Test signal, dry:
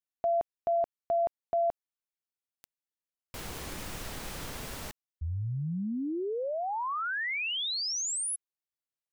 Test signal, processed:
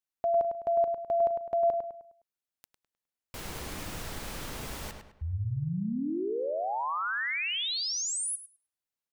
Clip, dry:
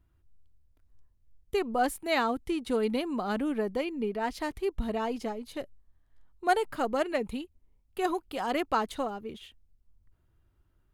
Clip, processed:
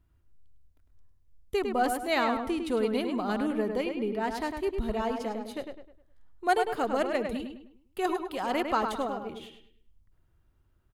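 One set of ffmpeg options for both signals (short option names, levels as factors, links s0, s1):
-filter_complex "[0:a]asplit=2[s0][s1];[s1]adelay=103,lowpass=f=3500:p=1,volume=0.531,asplit=2[s2][s3];[s3]adelay=103,lowpass=f=3500:p=1,volume=0.39,asplit=2[s4][s5];[s5]adelay=103,lowpass=f=3500:p=1,volume=0.39,asplit=2[s6][s7];[s7]adelay=103,lowpass=f=3500:p=1,volume=0.39,asplit=2[s8][s9];[s9]adelay=103,lowpass=f=3500:p=1,volume=0.39[s10];[s0][s2][s4][s6][s8][s10]amix=inputs=6:normalize=0"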